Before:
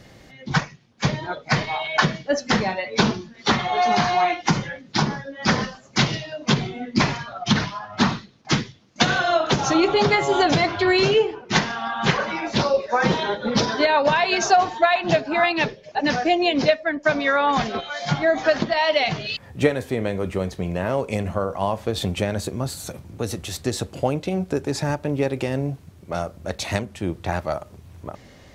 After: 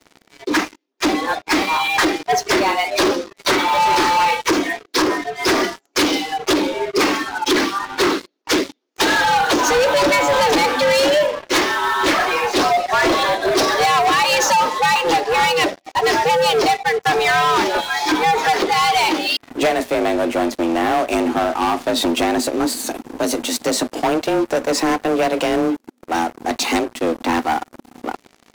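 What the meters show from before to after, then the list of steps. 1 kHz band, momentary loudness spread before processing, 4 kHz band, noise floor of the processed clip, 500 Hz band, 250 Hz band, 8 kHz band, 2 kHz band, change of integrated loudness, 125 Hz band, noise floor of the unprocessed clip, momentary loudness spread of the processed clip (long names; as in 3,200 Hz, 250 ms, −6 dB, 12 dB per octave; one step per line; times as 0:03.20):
+6.5 dB, 11 LU, +5.5 dB, −60 dBFS, +4.0 dB, +3.5 dB, +8.5 dB, +5.0 dB, +4.5 dB, −10.0 dB, −48 dBFS, 7 LU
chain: frequency shifter +160 Hz
leveller curve on the samples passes 5
level −8.5 dB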